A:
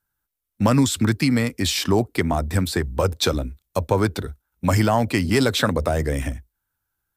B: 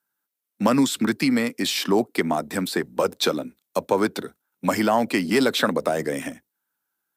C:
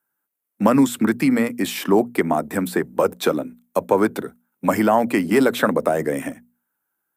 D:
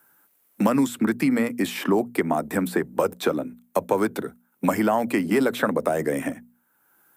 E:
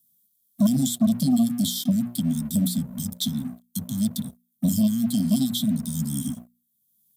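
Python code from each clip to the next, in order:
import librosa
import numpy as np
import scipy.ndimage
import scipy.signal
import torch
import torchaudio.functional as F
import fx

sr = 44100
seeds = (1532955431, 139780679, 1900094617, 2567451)

y1 = fx.dynamic_eq(x, sr, hz=7000.0, q=1.1, threshold_db=-36.0, ratio=4.0, max_db=-4)
y1 = scipy.signal.sosfilt(scipy.signal.butter(4, 190.0, 'highpass', fs=sr, output='sos'), y1)
y2 = fx.peak_eq(y1, sr, hz=4500.0, db=-13.0, octaves=1.3)
y2 = fx.hum_notches(y2, sr, base_hz=60, count=4)
y2 = F.gain(torch.from_numpy(y2), 4.0).numpy()
y3 = fx.band_squash(y2, sr, depth_pct=70)
y3 = F.gain(torch.from_numpy(y3), -4.0).numpy()
y4 = fx.brickwall_bandstop(y3, sr, low_hz=260.0, high_hz=3100.0)
y4 = fx.leveller(y4, sr, passes=2)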